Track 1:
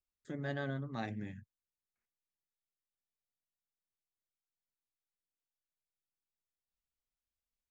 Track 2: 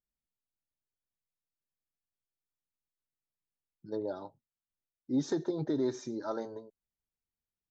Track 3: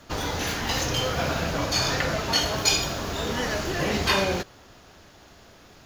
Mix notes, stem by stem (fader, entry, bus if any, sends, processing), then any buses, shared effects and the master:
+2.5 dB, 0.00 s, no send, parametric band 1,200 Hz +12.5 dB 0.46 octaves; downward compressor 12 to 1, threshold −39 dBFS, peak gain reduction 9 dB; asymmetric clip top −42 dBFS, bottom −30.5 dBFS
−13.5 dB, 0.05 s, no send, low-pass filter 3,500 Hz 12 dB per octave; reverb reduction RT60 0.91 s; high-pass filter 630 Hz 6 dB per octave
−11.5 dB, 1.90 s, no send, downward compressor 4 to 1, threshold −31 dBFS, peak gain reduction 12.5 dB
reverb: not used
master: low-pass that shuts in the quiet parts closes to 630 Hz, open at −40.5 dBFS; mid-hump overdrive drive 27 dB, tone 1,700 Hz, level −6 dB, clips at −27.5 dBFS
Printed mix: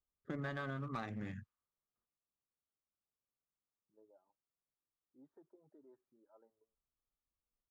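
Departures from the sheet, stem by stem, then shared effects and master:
stem 2 −13.5 dB → −25.0 dB
stem 3: muted
master: missing mid-hump overdrive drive 27 dB, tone 1,700 Hz, level −6 dB, clips at −27.5 dBFS

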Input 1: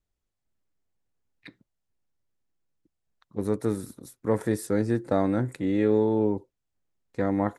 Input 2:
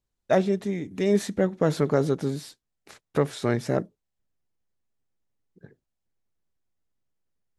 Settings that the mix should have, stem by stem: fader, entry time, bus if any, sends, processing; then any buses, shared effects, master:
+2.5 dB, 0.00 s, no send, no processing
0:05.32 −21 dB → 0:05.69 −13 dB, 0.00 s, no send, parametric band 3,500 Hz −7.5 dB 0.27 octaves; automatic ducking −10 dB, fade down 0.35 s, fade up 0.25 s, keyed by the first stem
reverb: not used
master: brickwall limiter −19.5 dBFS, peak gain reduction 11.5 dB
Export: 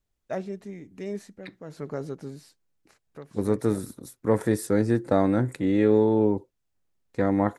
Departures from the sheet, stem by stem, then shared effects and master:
stem 2 −21.0 dB → −10.5 dB
master: missing brickwall limiter −19.5 dBFS, peak gain reduction 11.5 dB

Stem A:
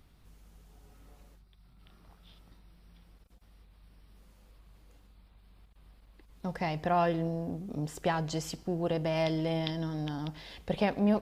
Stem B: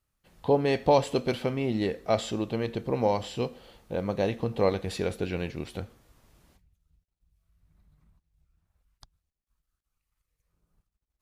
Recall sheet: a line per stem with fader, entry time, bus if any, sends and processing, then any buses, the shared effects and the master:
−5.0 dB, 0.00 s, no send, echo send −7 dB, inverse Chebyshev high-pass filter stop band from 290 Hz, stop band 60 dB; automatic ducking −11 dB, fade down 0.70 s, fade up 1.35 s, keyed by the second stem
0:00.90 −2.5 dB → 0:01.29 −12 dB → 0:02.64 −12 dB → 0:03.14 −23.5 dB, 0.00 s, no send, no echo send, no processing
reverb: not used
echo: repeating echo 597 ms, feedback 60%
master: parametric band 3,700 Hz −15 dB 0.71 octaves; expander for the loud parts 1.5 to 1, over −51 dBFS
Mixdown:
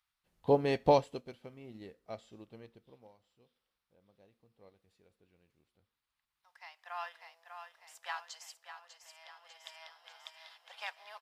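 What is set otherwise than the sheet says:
stem A −5.0 dB → +2.5 dB
master: missing parametric band 3,700 Hz −15 dB 0.71 octaves

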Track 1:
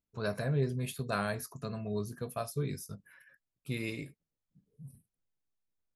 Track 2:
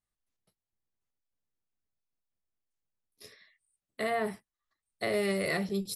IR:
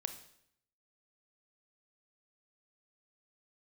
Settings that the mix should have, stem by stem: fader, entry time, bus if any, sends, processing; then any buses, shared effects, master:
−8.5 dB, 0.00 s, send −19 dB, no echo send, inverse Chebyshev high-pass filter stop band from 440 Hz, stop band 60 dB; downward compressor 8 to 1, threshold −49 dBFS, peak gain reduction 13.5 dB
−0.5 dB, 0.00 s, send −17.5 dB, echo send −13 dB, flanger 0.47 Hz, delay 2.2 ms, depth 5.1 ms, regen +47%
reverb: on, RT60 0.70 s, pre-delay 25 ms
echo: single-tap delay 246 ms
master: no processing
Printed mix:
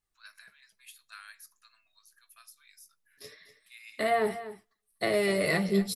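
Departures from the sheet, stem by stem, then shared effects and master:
stem 1: missing downward compressor 8 to 1, threshold −49 dBFS, peak gain reduction 13.5 dB
stem 2 −0.5 dB → +6.5 dB

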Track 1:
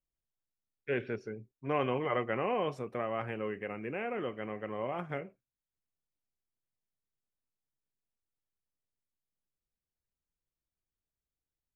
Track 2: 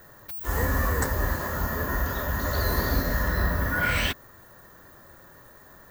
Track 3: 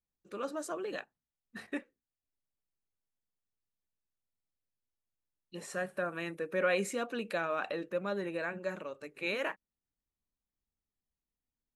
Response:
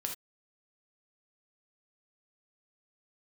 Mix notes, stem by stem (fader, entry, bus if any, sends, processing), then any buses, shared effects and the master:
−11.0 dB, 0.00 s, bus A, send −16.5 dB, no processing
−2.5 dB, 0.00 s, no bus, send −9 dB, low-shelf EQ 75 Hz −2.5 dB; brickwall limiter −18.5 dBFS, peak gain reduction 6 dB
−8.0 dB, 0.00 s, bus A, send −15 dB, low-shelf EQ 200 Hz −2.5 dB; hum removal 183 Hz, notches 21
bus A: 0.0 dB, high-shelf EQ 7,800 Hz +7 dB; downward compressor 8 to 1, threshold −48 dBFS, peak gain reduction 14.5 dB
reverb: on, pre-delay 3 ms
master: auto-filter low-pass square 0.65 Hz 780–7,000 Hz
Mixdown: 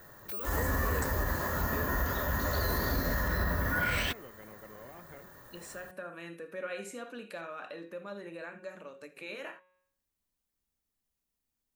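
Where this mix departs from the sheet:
stem 2: send off
stem 3 −8.0 dB → +3.5 dB
master: missing auto-filter low-pass square 0.65 Hz 780–7,000 Hz

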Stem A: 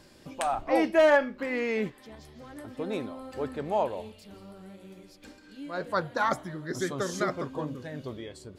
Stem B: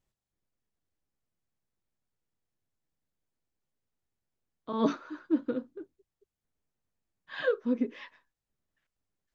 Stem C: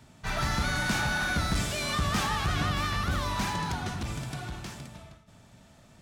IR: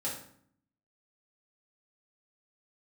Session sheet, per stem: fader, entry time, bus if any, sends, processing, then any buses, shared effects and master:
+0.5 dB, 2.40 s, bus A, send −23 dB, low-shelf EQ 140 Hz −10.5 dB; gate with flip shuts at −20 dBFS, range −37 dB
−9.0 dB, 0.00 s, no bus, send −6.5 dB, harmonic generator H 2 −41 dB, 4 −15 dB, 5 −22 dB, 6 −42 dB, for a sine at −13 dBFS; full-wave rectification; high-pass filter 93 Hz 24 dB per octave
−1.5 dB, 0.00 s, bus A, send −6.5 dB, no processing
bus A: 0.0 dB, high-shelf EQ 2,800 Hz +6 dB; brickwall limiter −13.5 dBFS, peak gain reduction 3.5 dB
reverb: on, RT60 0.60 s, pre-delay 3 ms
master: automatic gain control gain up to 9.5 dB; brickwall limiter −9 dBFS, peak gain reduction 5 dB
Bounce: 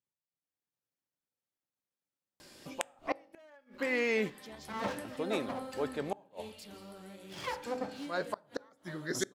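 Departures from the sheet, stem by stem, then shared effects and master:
stem A +0.5 dB → −10.5 dB
stem B −9.0 dB → −17.5 dB
stem C: muted

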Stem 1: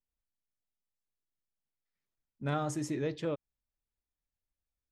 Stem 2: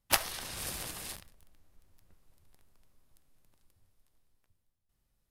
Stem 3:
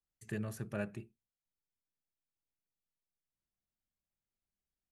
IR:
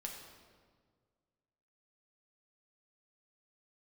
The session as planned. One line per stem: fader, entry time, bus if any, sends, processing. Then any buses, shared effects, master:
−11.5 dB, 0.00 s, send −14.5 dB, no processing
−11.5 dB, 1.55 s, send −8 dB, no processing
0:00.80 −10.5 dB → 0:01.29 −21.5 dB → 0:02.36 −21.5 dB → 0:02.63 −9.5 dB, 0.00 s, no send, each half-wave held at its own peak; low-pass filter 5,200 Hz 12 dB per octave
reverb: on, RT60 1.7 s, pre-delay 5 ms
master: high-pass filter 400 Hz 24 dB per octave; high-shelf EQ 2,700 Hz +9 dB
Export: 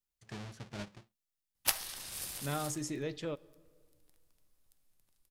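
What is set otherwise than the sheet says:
stem 1 −11.5 dB → −5.5 dB
master: missing high-pass filter 400 Hz 24 dB per octave

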